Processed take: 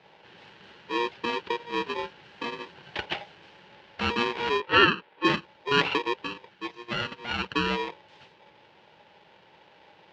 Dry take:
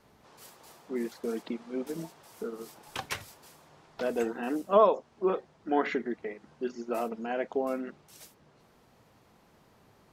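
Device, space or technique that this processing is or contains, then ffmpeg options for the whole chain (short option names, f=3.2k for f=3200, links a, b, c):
ring modulator pedal into a guitar cabinet: -filter_complex "[0:a]acrossover=split=2900[a][b];[b]acompressor=threshold=-59dB:ratio=4:attack=1:release=60[c];[a][c]amix=inputs=2:normalize=0,asplit=3[d][e][f];[d]afade=t=out:st=6.48:d=0.02[g];[e]highpass=500,afade=t=in:st=6.48:d=0.02,afade=t=out:st=7.42:d=0.02[h];[f]afade=t=in:st=7.42:d=0.02[i];[g][h][i]amix=inputs=3:normalize=0,aeval=exprs='val(0)*sgn(sin(2*PI*710*n/s))':c=same,highpass=110,equalizer=f=170:t=q:w=4:g=3,equalizer=f=260:t=q:w=4:g=-9,equalizer=f=390:t=q:w=4:g=3,equalizer=f=840:t=q:w=4:g=5,equalizer=f=1.2k:t=q:w=4:g=-9,equalizer=f=2.9k:t=q:w=4:g=5,lowpass=f=4.2k:w=0.5412,lowpass=f=4.2k:w=1.3066,asettb=1/sr,asplit=3[j][k][l];[j]atrim=end=4.604[m];[k]atrim=start=4.6:end=5.25,asetpts=PTS-STARTPTS,afade=t=in:d=0.004:c=qsin,afade=t=out:st=0.646:d=0.004:c=qsin,acrossover=split=240 3700:gain=0.224 1 0.158[n][o][p];[n][o][p]amix=inputs=3:normalize=0[q];[l]atrim=start=5.246[r];[m][q]acrossfade=d=0.004:c1=hsin:c2=qsin[s];[s][r]acrossfade=d=0.004:c1=qsin:c2=hsin,volume=5.5dB"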